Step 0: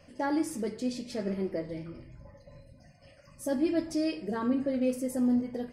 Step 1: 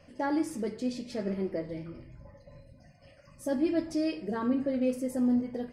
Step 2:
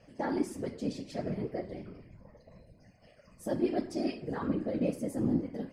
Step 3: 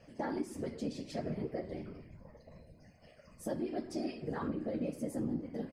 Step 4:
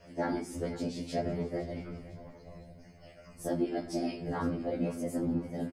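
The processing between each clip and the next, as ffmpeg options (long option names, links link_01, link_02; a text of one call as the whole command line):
ffmpeg -i in.wav -af "highshelf=frequency=6000:gain=-6" out.wav
ffmpeg -i in.wav -af "afftfilt=real='hypot(re,im)*cos(2*PI*random(0))':imag='hypot(re,im)*sin(2*PI*random(1))':win_size=512:overlap=0.75,volume=3dB" out.wav
ffmpeg -i in.wav -filter_complex "[0:a]acompressor=threshold=-34dB:ratio=4,asplit=2[link_01][link_02];[link_02]adelay=13,volume=-12dB[link_03];[link_01][link_03]amix=inputs=2:normalize=0" out.wav
ffmpeg -i in.wav -af "aecho=1:1:508|1016|1524|2032:0.141|0.0636|0.0286|0.0129,afftfilt=real='re*2*eq(mod(b,4),0)':imag='im*2*eq(mod(b,4),0)':win_size=2048:overlap=0.75,volume=7.5dB" out.wav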